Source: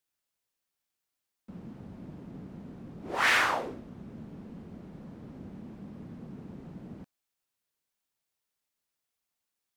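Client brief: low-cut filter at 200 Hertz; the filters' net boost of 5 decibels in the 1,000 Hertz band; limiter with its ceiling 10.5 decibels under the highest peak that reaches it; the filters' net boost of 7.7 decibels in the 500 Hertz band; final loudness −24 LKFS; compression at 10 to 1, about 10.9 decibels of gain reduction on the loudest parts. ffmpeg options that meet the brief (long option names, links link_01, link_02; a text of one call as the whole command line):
ffmpeg -i in.wav -af "highpass=200,equalizer=frequency=500:width_type=o:gain=8.5,equalizer=frequency=1000:width_type=o:gain=4,acompressor=threshold=-29dB:ratio=10,volume=20dB,alimiter=limit=-11.5dB:level=0:latency=1" out.wav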